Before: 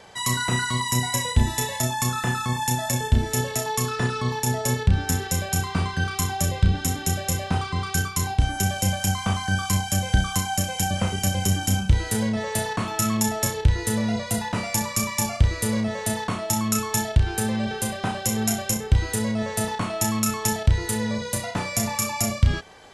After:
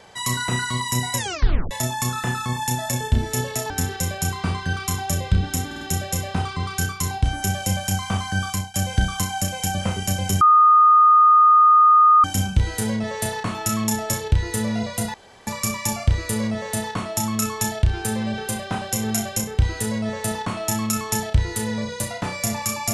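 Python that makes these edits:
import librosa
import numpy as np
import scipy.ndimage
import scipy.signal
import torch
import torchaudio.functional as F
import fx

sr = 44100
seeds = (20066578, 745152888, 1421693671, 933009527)

y = fx.edit(x, sr, fx.tape_stop(start_s=1.17, length_s=0.54),
    fx.cut(start_s=3.7, length_s=1.31),
    fx.stutter(start_s=6.97, slice_s=0.05, count=4),
    fx.fade_out_to(start_s=9.64, length_s=0.26, floor_db=-16.0),
    fx.insert_tone(at_s=11.57, length_s=1.83, hz=1230.0, db=-9.5),
    fx.room_tone_fill(start_s=14.47, length_s=0.33), tone=tone)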